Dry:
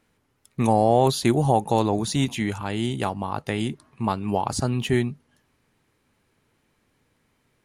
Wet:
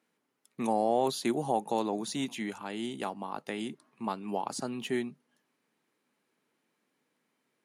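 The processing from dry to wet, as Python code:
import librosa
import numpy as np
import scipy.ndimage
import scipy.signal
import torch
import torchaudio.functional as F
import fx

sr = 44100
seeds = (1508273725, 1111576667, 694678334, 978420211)

y = scipy.signal.sosfilt(scipy.signal.butter(4, 190.0, 'highpass', fs=sr, output='sos'), x)
y = y * librosa.db_to_amplitude(-8.5)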